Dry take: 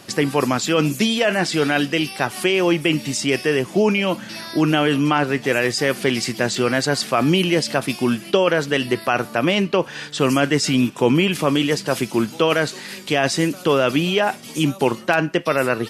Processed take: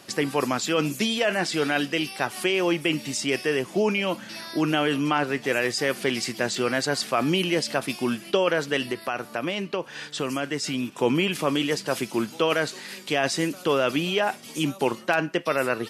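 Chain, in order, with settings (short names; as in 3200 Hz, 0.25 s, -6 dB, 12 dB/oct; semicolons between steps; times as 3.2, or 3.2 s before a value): low shelf 150 Hz -8.5 dB; 8.82–10.92 compressor 2:1, threshold -23 dBFS, peak gain reduction 6 dB; gain -4.5 dB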